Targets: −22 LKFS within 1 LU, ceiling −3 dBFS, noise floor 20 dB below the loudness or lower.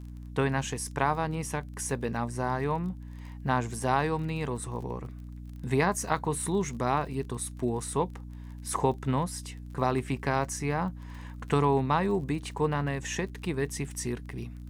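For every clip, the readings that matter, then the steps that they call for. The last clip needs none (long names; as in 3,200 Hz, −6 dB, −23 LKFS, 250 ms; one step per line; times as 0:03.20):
crackle rate 35 per second; mains hum 60 Hz; hum harmonics up to 300 Hz; level of the hum −39 dBFS; integrated loudness −30.5 LKFS; sample peak −10.5 dBFS; target loudness −22.0 LKFS
→ click removal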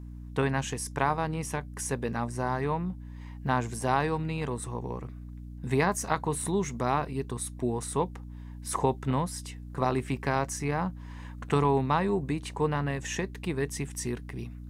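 crackle rate 0.068 per second; mains hum 60 Hz; hum harmonics up to 300 Hz; level of the hum −39 dBFS
→ hum removal 60 Hz, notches 5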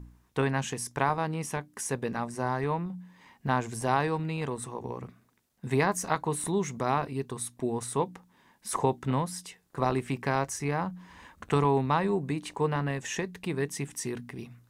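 mains hum none found; integrated loudness −30.5 LKFS; sample peak −10.5 dBFS; target loudness −22.0 LKFS
→ level +8.5 dB
brickwall limiter −3 dBFS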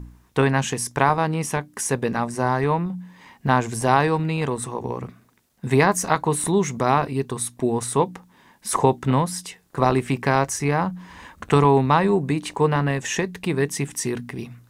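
integrated loudness −22.0 LKFS; sample peak −3.0 dBFS; background noise floor −58 dBFS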